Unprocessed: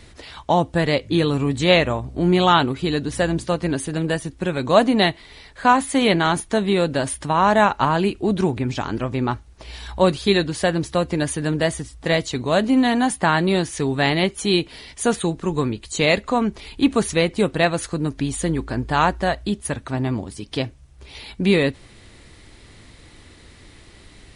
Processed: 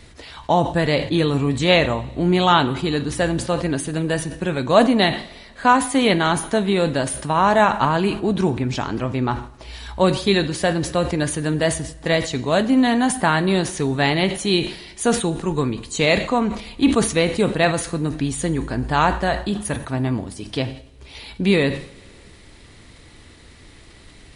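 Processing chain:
coupled-rooms reverb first 0.64 s, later 2.6 s, from −17 dB, DRR 12.5 dB
level that may fall only so fast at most 110 dB per second

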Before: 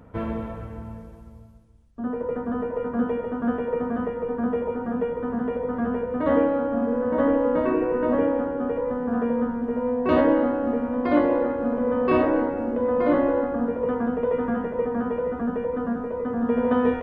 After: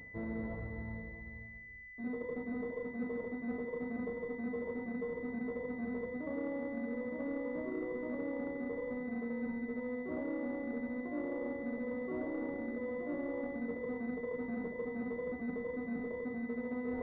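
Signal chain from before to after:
dynamic equaliser 260 Hz, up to +5 dB, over −34 dBFS, Q 0.74
reversed playback
downward compressor 6 to 1, threshold −32 dBFS, peak gain reduction 19.5 dB
reversed playback
switching amplifier with a slow clock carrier 2,000 Hz
level −5 dB

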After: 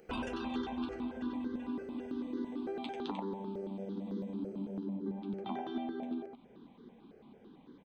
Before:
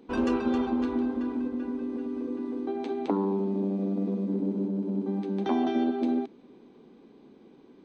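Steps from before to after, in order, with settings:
parametric band 3,400 Hz +4.5 dB 0.35 octaves
downward compressor, threshold −33 dBFS, peak gain reduction 11 dB
high-shelf EQ 2,600 Hz +7 dB, from 0:04.85 −6.5 dB
single-tap delay 94 ms −4.5 dB
step-sequenced phaser 9 Hz 990–2,500 Hz
level +1 dB

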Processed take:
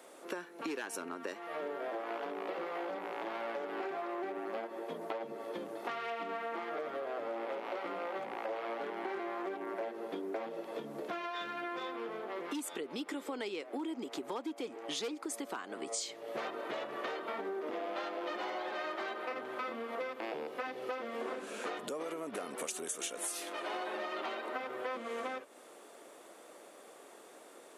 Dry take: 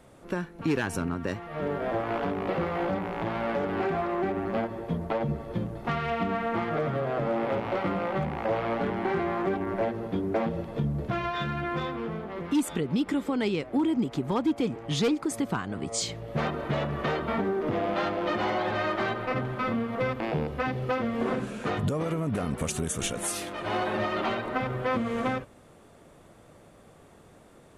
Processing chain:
high-pass filter 320 Hz 24 dB per octave
high-shelf EQ 4,300 Hz +5.5 dB
downward compressor 4 to 1, threshold −39 dBFS, peak gain reduction 14.5 dB
level +1 dB

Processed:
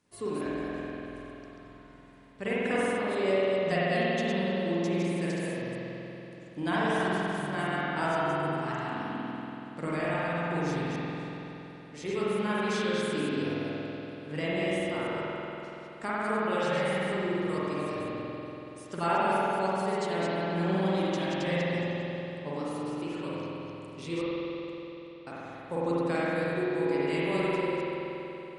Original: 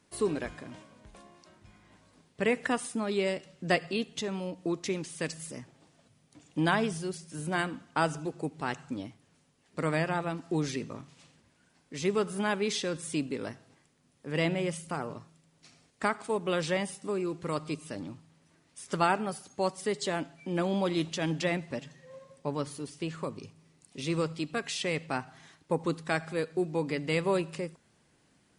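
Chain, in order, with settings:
delay that plays each chunk backwards 137 ms, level −4 dB
0:24.21–0:25.27: gate with flip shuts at −25 dBFS, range −41 dB
spring reverb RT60 3.6 s, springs 47 ms, chirp 50 ms, DRR −8.5 dB
level −8 dB

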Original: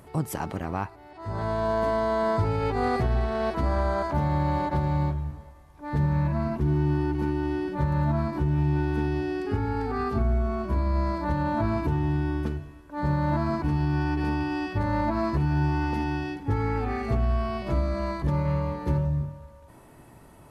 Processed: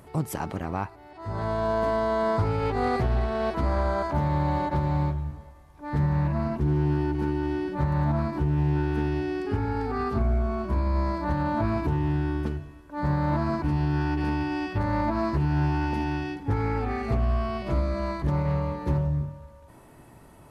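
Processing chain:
highs frequency-modulated by the lows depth 0.16 ms

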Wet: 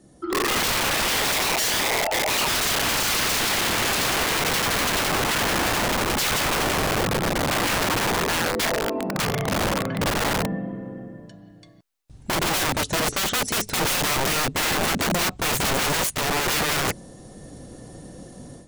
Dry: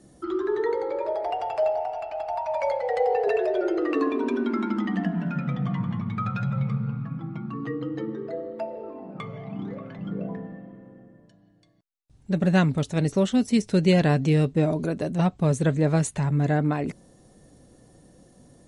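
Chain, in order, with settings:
automatic gain control gain up to 12.5 dB
wrap-around overflow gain 18 dB

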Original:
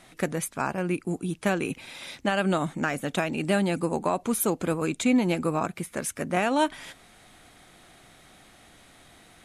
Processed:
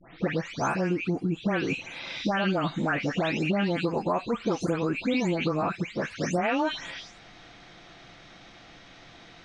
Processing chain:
every frequency bin delayed by itself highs late, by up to 275 ms
Chebyshev low-pass filter 5,800 Hz, order 4
downward compressor, threshold −28 dBFS, peak gain reduction 7 dB
level +5.5 dB

